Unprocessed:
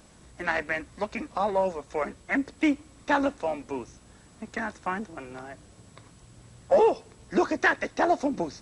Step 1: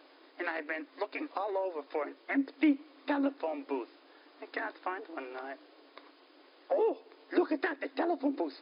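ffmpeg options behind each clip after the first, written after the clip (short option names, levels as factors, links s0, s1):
-filter_complex "[0:a]afftfilt=real='re*between(b*sr/4096,260,5100)':imag='im*between(b*sr/4096,260,5100)':win_size=4096:overlap=0.75,acrossover=split=340[s0][s1];[s1]acompressor=threshold=0.0224:ratio=6[s2];[s0][s2]amix=inputs=2:normalize=0"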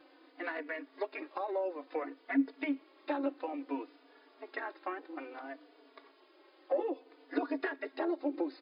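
-filter_complex "[0:a]bass=f=250:g=6,treble=f=4000:g=-5,asplit=2[s0][s1];[s1]adelay=3.4,afreqshift=-0.59[s2];[s0][s2]amix=inputs=2:normalize=1"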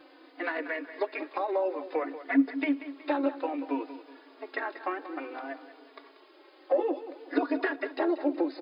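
-af "aecho=1:1:186|372|558|744:0.224|0.0873|0.0341|0.0133,volume=2"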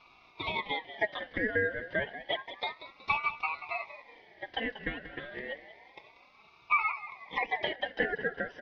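-af "highpass=f=450:w=0.5412,highpass=f=450:w=1.3066,equalizer=f=450:t=q:w=4:g=8,equalizer=f=640:t=q:w=4:g=9,equalizer=f=920:t=q:w=4:g=10,equalizer=f=1400:t=q:w=4:g=-7,equalizer=f=2000:t=q:w=4:g=9,equalizer=f=3200:t=q:w=4:g=3,lowpass=f=3600:w=0.5412,lowpass=f=3600:w=1.3066,aeval=exprs='val(0)*sin(2*PI*1400*n/s+1400*0.25/0.3*sin(2*PI*0.3*n/s))':c=same,volume=0.596"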